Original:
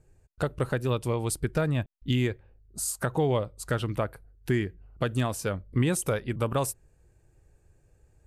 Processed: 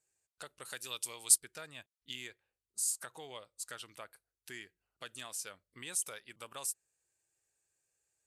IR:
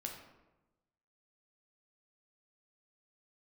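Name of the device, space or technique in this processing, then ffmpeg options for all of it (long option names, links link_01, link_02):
piezo pickup straight into a mixer: -filter_complex "[0:a]lowpass=8800,aderivative,asettb=1/sr,asplit=3[link_01][link_02][link_03];[link_01]atrim=end=0.654[link_04];[link_02]atrim=start=0.65:end=1.38,asetpts=PTS-STARTPTS,afade=type=in:duration=0.004:curve=qsin,afade=type=out:start_time=0.726:duration=0.004:curve=qsin,highshelf=frequency=2800:gain=11.5[link_05];[link_03]atrim=start=1.376[link_06];[link_04][link_05]acrossfade=duration=0.004:curve1=hsin:curve2=qsin[link_07];[link_07][link_06]acrossfade=duration=0.004:curve1=qsin:curve2=hsin"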